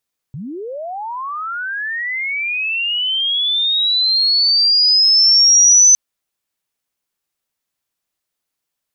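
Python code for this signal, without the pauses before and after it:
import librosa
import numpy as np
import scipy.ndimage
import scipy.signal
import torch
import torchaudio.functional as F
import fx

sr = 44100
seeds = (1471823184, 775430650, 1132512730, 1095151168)

y = fx.chirp(sr, length_s=5.61, from_hz=120.0, to_hz=6100.0, law='linear', from_db=-25.5, to_db=-5.5)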